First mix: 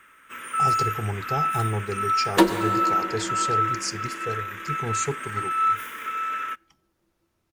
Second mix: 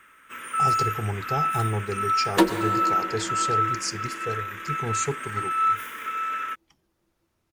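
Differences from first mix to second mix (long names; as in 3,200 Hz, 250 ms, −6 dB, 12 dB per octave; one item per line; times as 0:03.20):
first sound: send off
second sound: send off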